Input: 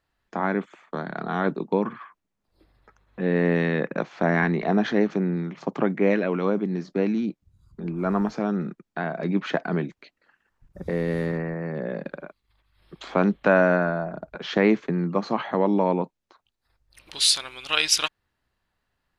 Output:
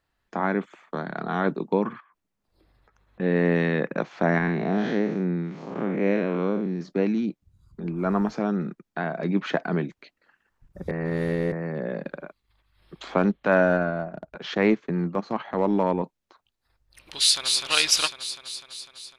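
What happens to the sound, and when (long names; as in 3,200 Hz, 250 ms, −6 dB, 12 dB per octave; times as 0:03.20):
0:02.00–0:03.20: downward compressor 8 to 1, threshold −56 dBFS
0:04.38–0:06.81: spectrum smeared in time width 146 ms
0:10.91–0:11.52: reverse
0:13.18–0:16.03: transient designer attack −5 dB, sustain −9 dB
0:17.18–0:17.63: delay throw 250 ms, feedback 70%, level −4 dB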